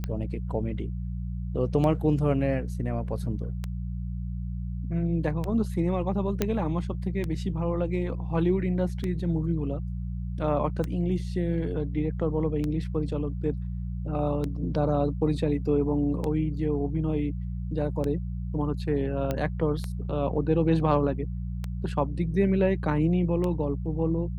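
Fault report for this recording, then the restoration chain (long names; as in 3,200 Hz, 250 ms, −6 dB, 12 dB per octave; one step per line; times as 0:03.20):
mains hum 60 Hz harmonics 3 −32 dBFS
scratch tick 33 1/3 rpm −18 dBFS
0:06.42: click −10 dBFS
0:19.31: click −15 dBFS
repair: click removal
hum removal 60 Hz, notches 3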